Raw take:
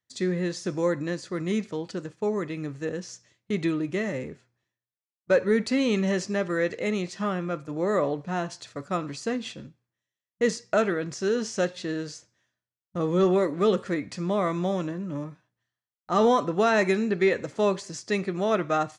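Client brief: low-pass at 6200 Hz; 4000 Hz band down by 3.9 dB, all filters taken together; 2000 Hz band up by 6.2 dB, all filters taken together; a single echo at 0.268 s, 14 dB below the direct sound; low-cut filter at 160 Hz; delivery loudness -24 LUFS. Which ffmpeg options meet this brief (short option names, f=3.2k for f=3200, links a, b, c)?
-af "highpass=160,lowpass=6.2k,equalizer=f=2k:t=o:g=9,equalizer=f=4k:t=o:g=-7.5,aecho=1:1:268:0.2,volume=2dB"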